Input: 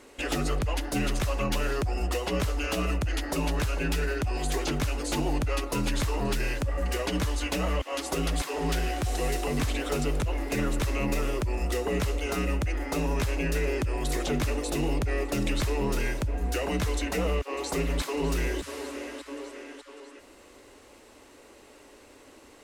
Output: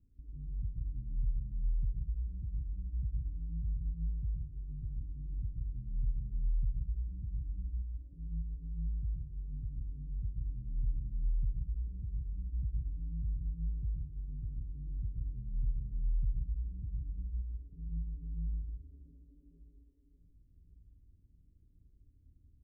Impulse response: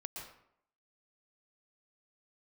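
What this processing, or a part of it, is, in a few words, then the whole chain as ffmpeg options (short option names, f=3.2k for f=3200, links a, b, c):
club heard from the street: -filter_complex "[0:a]alimiter=level_in=6.5dB:limit=-24dB:level=0:latency=1,volume=-6.5dB,lowpass=f=140:w=0.5412,lowpass=f=140:w=1.3066[a];[1:a]atrim=start_sample=2205[b];[a][b]afir=irnorm=-1:irlink=0,asplit=2[c][d];[d]adelay=1136,lowpass=f=2k:p=1,volume=-23.5dB,asplit=2[e][f];[f]adelay=1136,lowpass=f=2k:p=1,volume=0.5,asplit=2[g][h];[h]adelay=1136,lowpass=f=2k:p=1,volume=0.5[i];[c][e][g][i]amix=inputs=4:normalize=0,volume=4dB"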